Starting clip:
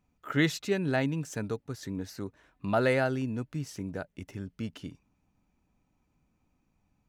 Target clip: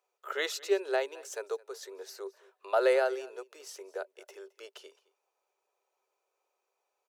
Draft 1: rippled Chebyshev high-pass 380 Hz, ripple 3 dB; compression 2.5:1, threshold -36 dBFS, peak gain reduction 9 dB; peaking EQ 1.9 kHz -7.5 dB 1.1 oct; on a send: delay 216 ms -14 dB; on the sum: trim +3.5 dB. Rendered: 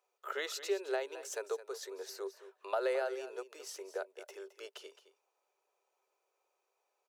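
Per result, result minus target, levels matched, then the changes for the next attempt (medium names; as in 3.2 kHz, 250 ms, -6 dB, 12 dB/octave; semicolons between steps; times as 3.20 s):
compression: peak gain reduction +9 dB; echo-to-direct +8 dB
remove: compression 2.5:1, threshold -36 dBFS, peak gain reduction 9 dB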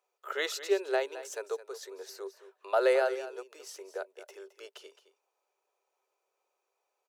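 echo-to-direct +8 dB
change: delay 216 ms -22 dB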